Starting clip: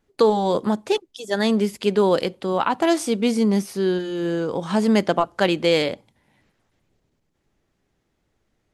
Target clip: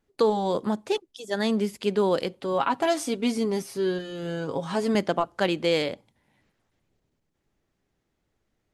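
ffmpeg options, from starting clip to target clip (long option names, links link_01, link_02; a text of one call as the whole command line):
ffmpeg -i in.wav -filter_complex "[0:a]asettb=1/sr,asplit=3[link_01][link_02][link_03];[link_01]atrim=end=2.424[link_04];[link_02]atrim=start=2.42:end=4.95,asetpts=PTS-STARTPTS,afade=type=in:duration=0.004:curve=qsin,afade=type=out:start_time=2.526:duration=0.004:curve=qsin,aecho=1:1:7.3:0.59,atrim=end_sample=111573[link_05];[link_03]atrim=start=4.946[link_06];[link_04][link_05]acrossfade=duration=0.004:curve1=hsin:curve2=qsin[link_07];[link_07][link_06]acrossfade=duration=0.004:curve1=qsin:curve2=hsin,volume=-5dB" out.wav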